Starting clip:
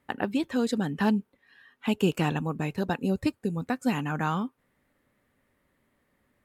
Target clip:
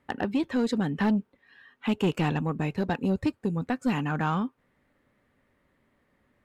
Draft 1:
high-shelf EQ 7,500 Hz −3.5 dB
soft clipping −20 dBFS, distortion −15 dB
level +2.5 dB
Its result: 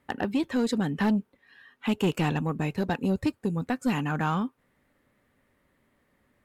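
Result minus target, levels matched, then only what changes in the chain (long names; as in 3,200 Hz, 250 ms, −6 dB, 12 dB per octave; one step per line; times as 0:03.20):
8,000 Hz band +4.5 dB
change: high-shelf EQ 7,500 Hz −13.5 dB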